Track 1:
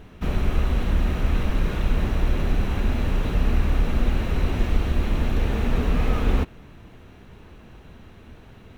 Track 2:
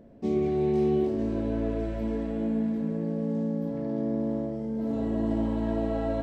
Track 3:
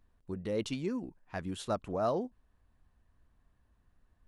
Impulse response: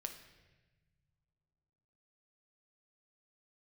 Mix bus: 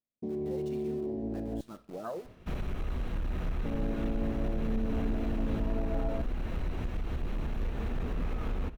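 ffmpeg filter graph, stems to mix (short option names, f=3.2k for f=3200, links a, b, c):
-filter_complex "[0:a]alimiter=limit=-15dB:level=0:latency=1:release=126,asoftclip=type=hard:threshold=-20dB,adynamicequalizer=threshold=0.00355:dfrequency=2000:dqfactor=0.7:tfrequency=2000:tqfactor=0.7:attack=5:release=100:ratio=0.375:range=2:mode=cutabove:tftype=highshelf,adelay=2250,volume=-11dB,asplit=2[a][b];[b]volume=-5dB[c];[1:a]volume=-2.5dB,asplit=3[d][e][f];[d]atrim=end=1.61,asetpts=PTS-STARTPTS,afade=t=out:st=1.606:d=0.004:c=hsin[g];[e]atrim=start=1.61:end=3.65,asetpts=PTS-STARTPTS,volume=0[h];[f]atrim=start=3.65,asetpts=PTS-STARTPTS,afade=t=in:d=0.004:c=hsin[i];[g][h][i]concat=n=3:v=0:a=1,asplit=2[j][k];[k]volume=-23.5dB[l];[2:a]equalizer=f=71:w=0.8:g=-8,flanger=delay=0.2:depth=8.7:regen=-14:speed=0.53:shape=sinusoidal,acrusher=bits=8:dc=4:mix=0:aa=0.000001,volume=-5dB,asplit=2[m][n];[n]volume=-6.5dB[o];[j][m]amix=inputs=2:normalize=0,afwtdn=0.02,alimiter=level_in=4.5dB:limit=-24dB:level=0:latency=1:release=64,volume=-4.5dB,volume=0dB[p];[3:a]atrim=start_sample=2205[q];[c][l][o]amix=inputs=3:normalize=0[r];[r][q]afir=irnorm=-1:irlink=0[s];[a][p][s]amix=inputs=3:normalize=0,agate=range=-33dB:threshold=-49dB:ratio=3:detection=peak"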